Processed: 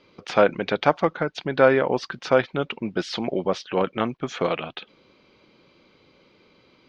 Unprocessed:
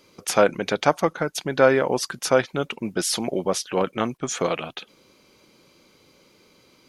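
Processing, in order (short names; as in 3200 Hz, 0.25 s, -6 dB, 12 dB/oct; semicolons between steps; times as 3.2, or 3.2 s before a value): LPF 4100 Hz 24 dB/oct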